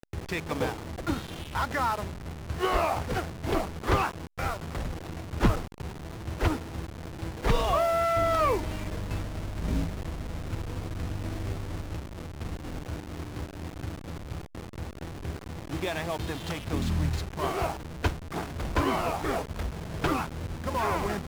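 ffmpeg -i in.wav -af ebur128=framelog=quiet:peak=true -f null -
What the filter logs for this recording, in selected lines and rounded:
Integrated loudness:
  I:         -31.5 LUFS
  Threshold: -41.5 LUFS
Loudness range:
  LRA:         9.2 LU
  Threshold: -51.5 LUFS
  LRA low:   -37.6 LUFS
  LRA high:  -28.4 LUFS
True peak:
  Peak:      -12.2 dBFS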